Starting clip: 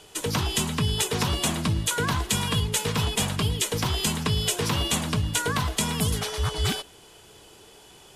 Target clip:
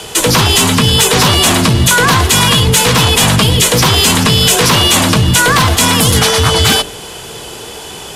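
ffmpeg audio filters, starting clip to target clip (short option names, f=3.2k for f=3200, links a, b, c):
-af "afreqshift=19,apsyclip=28dB,bandreject=f=45.47:t=h:w=4,bandreject=f=90.94:t=h:w=4,bandreject=f=136.41:t=h:w=4,bandreject=f=181.88:t=h:w=4,bandreject=f=227.35:t=h:w=4,bandreject=f=272.82:t=h:w=4,bandreject=f=318.29:t=h:w=4,bandreject=f=363.76:t=h:w=4,bandreject=f=409.23:t=h:w=4,bandreject=f=454.7:t=h:w=4,bandreject=f=500.17:t=h:w=4,bandreject=f=545.64:t=h:w=4,bandreject=f=591.11:t=h:w=4,volume=-5dB"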